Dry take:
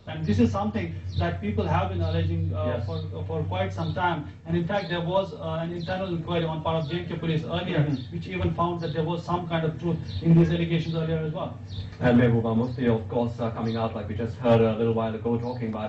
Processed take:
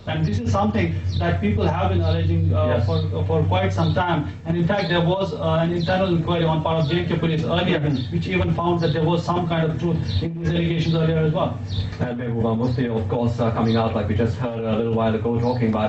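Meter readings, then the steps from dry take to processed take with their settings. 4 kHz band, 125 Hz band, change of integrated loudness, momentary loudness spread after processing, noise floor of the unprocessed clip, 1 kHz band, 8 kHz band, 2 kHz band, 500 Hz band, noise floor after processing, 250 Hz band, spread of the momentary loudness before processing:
+7.5 dB, +6.0 dB, +5.0 dB, 4 LU, -38 dBFS, +5.0 dB, n/a, +5.5 dB, +4.5 dB, -29 dBFS, +4.5 dB, 10 LU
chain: negative-ratio compressor -27 dBFS, ratio -1; gain +7.5 dB

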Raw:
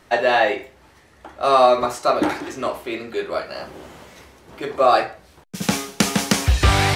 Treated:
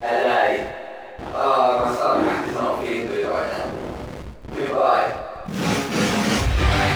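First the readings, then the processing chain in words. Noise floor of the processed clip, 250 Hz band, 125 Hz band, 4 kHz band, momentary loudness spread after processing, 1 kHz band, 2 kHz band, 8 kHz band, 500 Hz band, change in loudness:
-37 dBFS, +1.0 dB, -1.5 dB, -2.5 dB, 15 LU, -0.5 dB, -0.5 dB, -5.5 dB, -0.5 dB, -1.5 dB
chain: phase scrambler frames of 0.2 s; high shelf 5100 Hz -11 dB; harmonic-percussive split harmonic -7 dB; backlash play -39 dBFS; two-slope reverb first 0.34 s, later 2 s, from -20 dB, DRR 10.5 dB; fast leveller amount 50%

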